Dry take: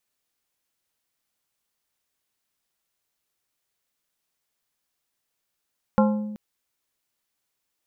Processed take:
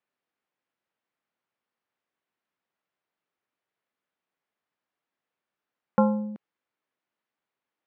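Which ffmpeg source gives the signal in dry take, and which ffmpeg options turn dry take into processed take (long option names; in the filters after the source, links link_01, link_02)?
-f lavfi -i "aevalsrc='0.178*pow(10,-3*t/1.22)*sin(2*PI*211*t)+0.126*pow(10,-3*t/0.642)*sin(2*PI*527.5*t)+0.0891*pow(10,-3*t/0.462)*sin(2*PI*844*t)+0.0631*pow(10,-3*t/0.395)*sin(2*PI*1055*t)+0.0447*pow(10,-3*t/0.329)*sin(2*PI*1371.5*t)':duration=0.38:sample_rate=44100"
-af "highpass=160,lowpass=2100"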